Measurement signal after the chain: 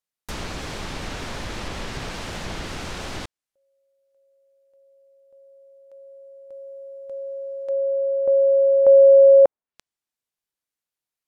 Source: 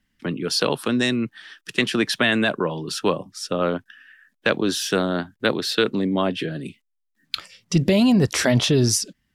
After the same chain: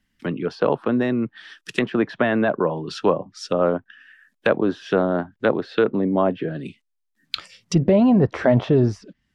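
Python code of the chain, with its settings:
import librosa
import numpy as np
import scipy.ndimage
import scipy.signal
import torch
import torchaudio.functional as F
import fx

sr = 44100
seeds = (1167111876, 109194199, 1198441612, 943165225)

y = fx.quant_float(x, sr, bits=6)
y = fx.dynamic_eq(y, sr, hz=670.0, q=0.96, threshold_db=-32.0, ratio=4.0, max_db=5)
y = fx.env_lowpass_down(y, sr, base_hz=1400.0, full_db=-19.5)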